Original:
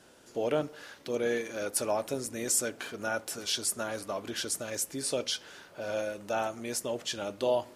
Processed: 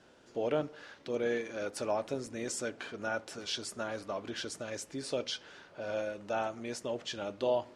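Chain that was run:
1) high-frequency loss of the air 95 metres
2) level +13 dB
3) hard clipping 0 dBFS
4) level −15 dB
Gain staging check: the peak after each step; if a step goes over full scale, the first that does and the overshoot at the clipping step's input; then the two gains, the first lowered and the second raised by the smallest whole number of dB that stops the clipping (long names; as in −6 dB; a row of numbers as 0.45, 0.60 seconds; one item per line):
−16.5, −3.5, −3.5, −18.5 dBFS
no step passes full scale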